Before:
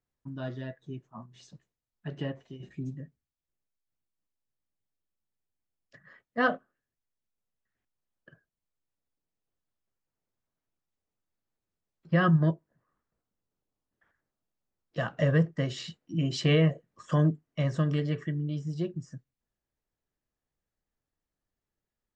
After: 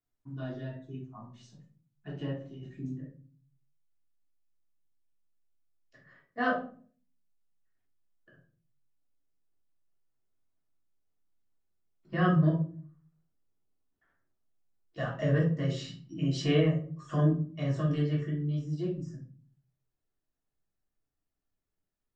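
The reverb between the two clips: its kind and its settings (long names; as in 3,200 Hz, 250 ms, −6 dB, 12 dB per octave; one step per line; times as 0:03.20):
rectangular room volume 340 cubic metres, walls furnished, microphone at 3.3 metres
level −8.5 dB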